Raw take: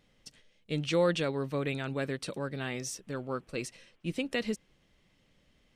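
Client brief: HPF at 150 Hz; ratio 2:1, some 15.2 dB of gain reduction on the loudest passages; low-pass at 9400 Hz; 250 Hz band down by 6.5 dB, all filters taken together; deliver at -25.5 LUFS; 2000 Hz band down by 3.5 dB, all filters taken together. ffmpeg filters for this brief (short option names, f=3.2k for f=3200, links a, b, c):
-af "highpass=150,lowpass=9.4k,equalizer=f=250:t=o:g=-8,equalizer=f=2k:t=o:g=-4.5,acompressor=threshold=-53dB:ratio=2,volume=23.5dB"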